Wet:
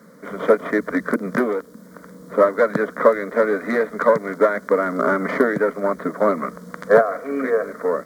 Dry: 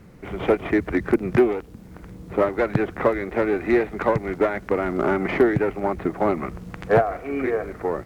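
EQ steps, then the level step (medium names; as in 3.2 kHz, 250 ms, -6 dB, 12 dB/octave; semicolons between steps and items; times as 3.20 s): high-pass 260 Hz 12 dB/octave; static phaser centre 530 Hz, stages 8; +7.5 dB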